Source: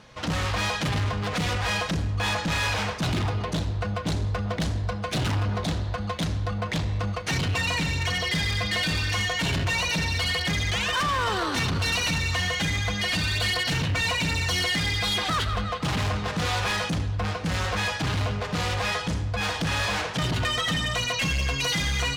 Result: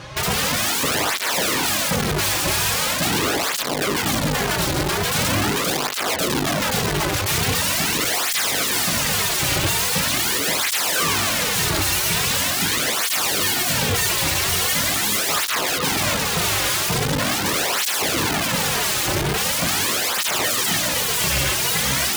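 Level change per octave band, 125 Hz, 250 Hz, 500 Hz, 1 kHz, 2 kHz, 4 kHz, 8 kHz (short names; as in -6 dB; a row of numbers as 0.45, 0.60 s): -1.5, +4.0, +7.0, +5.5, +4.5, +6.0, +15.0 dB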